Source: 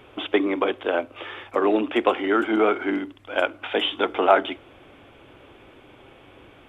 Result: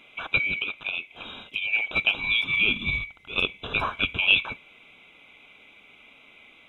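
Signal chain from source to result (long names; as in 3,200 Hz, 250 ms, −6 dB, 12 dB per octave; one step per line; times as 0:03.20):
neighbouring bands swapped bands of 2,000 Hz
0:00.60–0:01.73: downward compressor, threshold −23 dBFS, peak gain reduction 7 dB
0:02.65–0:04.21: low-shelf EQ 240 Hz +12 dB
level −3.5 dB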